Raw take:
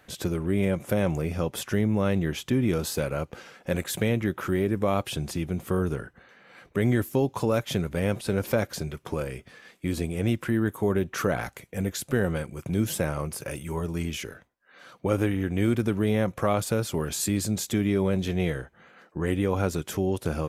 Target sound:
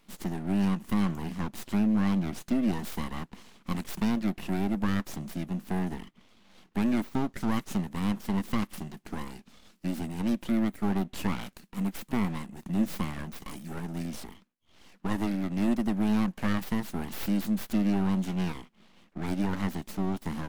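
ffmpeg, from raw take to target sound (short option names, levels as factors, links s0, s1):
-filter_complex "[0:a]lowshelf=f=140:t=q:w=3:g=-13,acrossover=split=340[s0][s1];[s1]aeval=exprs='abs(val(0))':c=same[s2];[s0][s2]amix=inputs=2:normalize=0,volume=0.596"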